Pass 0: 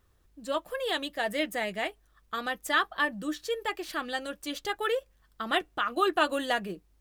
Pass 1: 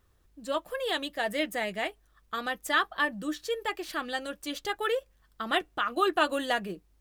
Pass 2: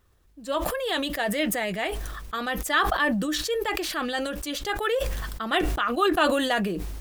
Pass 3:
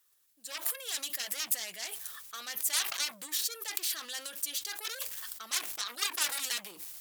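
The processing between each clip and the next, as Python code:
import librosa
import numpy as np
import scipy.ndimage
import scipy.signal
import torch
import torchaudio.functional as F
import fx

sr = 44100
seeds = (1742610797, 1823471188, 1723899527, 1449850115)

y1 = x
y2 = fx.sustainer(y1, sr, db_per_s=29.0)
y2 = y2 * 10.0 ** (2.5 / 20.0)
y3 = fx.cheby_harmonics(y2, sr, harmonics=(3, 7), levels_db=(-15, -11), full_scale_db=-9.5)
y3 = np.diff(y3, prepend=0.0)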